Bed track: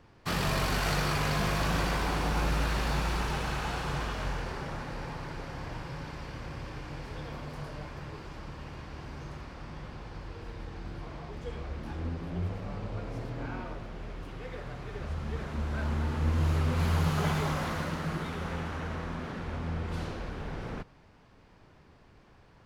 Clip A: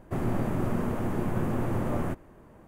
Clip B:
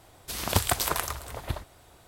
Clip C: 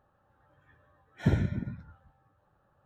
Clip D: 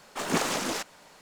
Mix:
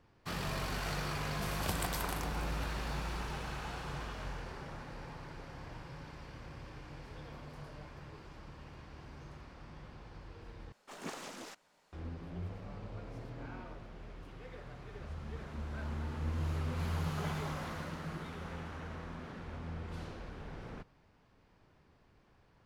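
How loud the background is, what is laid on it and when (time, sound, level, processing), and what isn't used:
bed track −8.5 dB
0:01.13: mix in B −13.5 dB
0:10.72: overwrite with D −16.5 dB + high-shelf EQ 7,200 Hz −4 dB
not used: A, C

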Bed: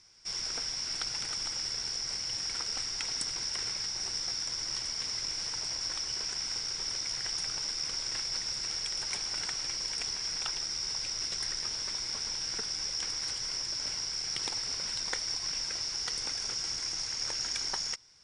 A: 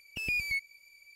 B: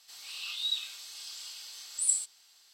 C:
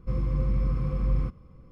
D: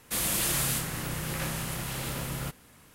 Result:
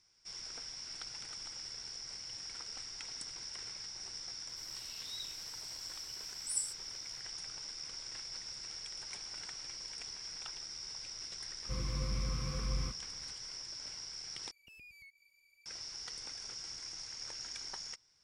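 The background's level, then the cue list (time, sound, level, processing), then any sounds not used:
bed −10.5 dB
0:04.48: mix in B −9.5 dB + first difference
0:11.62: mix in C −1.5 dB + tilt shelving filter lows −9.5 dB, about 1,400 Hz
0:14.51: overwrite with A −11.5 dB + downward compressor 4 to 1, threshold −45 dBFS
not used: D

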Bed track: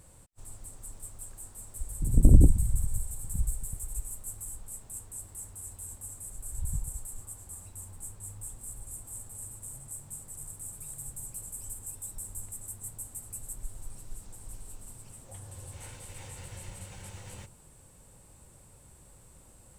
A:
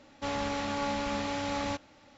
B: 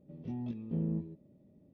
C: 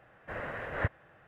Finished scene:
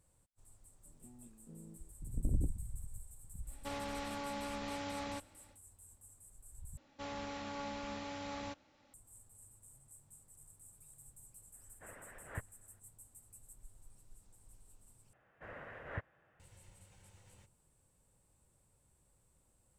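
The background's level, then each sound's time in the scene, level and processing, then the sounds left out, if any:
bed track −17 dB
0:00.76: mix in B −17.5 dB + low-shelf EQ 160 Hz −7 dB
0:03.43: mix in A −7.5 dB, fades 0.10 s + brickwall limiter −25 dBFS
0:06.77: overwrite with A −11 dB
0:11.53: mix in C −12 dB + harmonic and percussive parts rebalanced harmonic −17 dB
0:15.13: overwrite with C −11.5 dB

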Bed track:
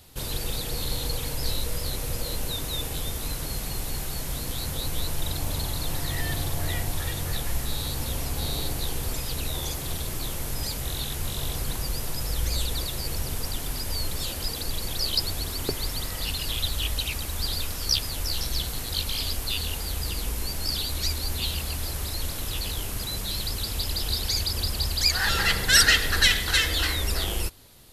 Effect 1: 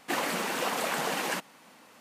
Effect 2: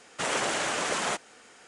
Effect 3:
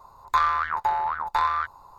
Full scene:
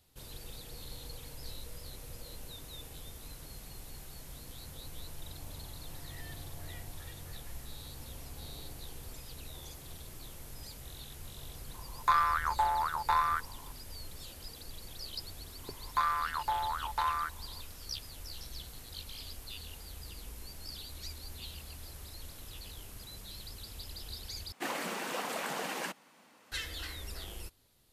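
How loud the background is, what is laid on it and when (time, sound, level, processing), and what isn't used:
bed track −16.5 dB
0:11.74: mix in 3 −5 dB
0:15.63: mix in 3 −8.5 dB
0:24.52: overwrite with 1 −6.5 dB
not used: 2

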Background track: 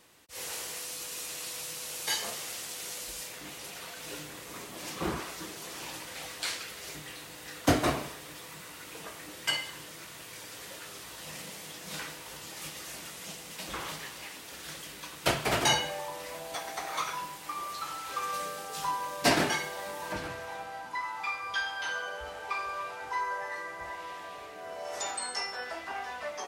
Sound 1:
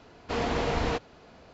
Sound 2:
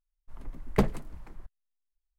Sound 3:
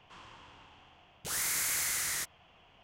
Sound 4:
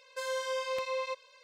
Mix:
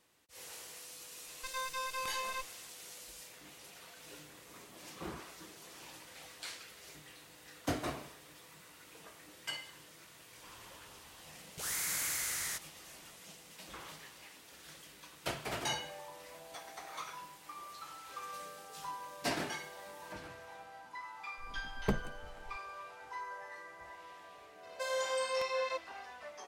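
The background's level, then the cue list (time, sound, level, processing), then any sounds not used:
background track −11 dB
0:01.27: mix in 4 −1.5 dB + lower of the sound and its delayed copy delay 0.82 ms
0:10.33: mix in 3 −4 dB
0:21.10: mix in 2 −8.5 dB
0:24.63: mix in 4 −1 dB
not used: 1

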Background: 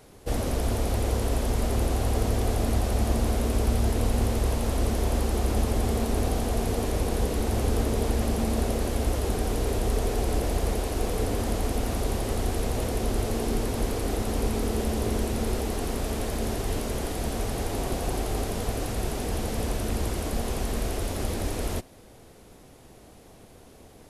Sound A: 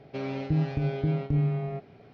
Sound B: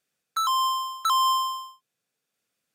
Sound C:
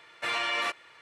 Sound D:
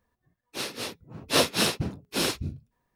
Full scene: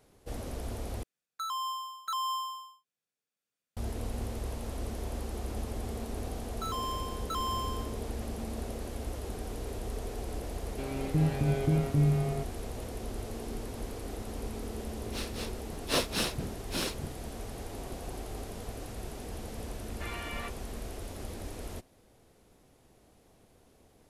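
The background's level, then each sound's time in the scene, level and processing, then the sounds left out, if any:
background −11.5 dB
0:01.03: overwrite with B −11 dB
0:06.25: mix in B −12.5 dB
0:10.64: mix in A −5.5 dB + automatic gain control gain up to 5.5 dB
0:14.58: mix in D −7 dB
0:19.78: mix in C −10.5 dB + Gaussian smoothing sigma 1.8 samples

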